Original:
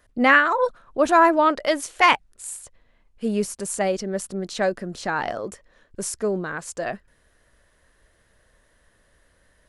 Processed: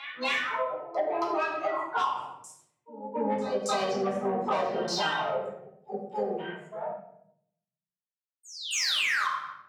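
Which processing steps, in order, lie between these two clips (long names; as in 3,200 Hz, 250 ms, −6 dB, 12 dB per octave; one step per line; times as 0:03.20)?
source passing by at 0:04.31, 7 m/s, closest 4.3 metres
sound drawn into the spectrogram fall, 0:08.72–0:09.28, 1,000–7,200 Hz −24 dBFS
pitch-shifted copies added +4 semitones −4 dB, +12 semitones −6 dB
auto-filter low-pass saw down 0.82 Hz 480–5,600 Hz
downward expander −52 dBFS
noise reduction from a noise print of the clip's start 18 dB
on a send: backwards echo 274 ms −19.5 dB
on the sum: mid-hump overdrive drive 18 dB, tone 5,300 Hz, clips at −8.5 dBFS
high-pass filter 110 Hz 24 dB per octave
rectangular room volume 140 cubic metres, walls mixed, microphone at 1.3 metres
downward compressor 6 to 1, threshold −17 dBFS, peak gain reduction 11.5 dB
level −8 dB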